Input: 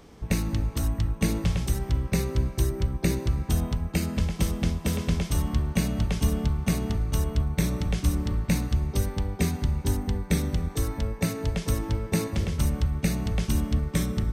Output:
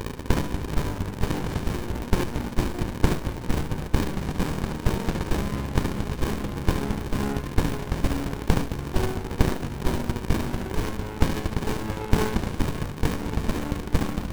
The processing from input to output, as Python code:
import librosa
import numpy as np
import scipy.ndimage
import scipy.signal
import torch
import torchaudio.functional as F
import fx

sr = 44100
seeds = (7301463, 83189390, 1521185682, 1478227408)

p1 = fx.pitch_glide(x, sr, semitones=-2.0, runs='ending unshifted')
p2 = fx.dmg_crackle(p1, sr, seeds[0], per_s=280.0, level_db=-44.0)
p3 = fx.peak_eq(p2, sr, hz=1000.0, db=13.0, octaves=2.1)
p4 = fx.rider(p3, sr, range_db=10, speed_s=0.5)
p5 = p3 + (p4 * 10.0 ** (0.0 / 20.0))
p6 = fx.riaa(p5, sr, side='recording')
p7 = p6 + fx.echo_single(p6, sr, ms=72, db=-6.0, dry=0)
p8 = fx.running_max(p7, sr, window=65)
y = p8 * 10.0 ** (-1.5 / 20.0)